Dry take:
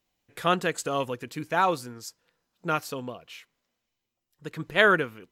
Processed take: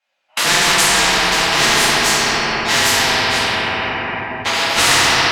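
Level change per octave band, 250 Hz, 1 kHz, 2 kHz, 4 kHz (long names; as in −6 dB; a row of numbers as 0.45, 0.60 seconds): +8.5, +11.5, +14.0, +23.5 decibels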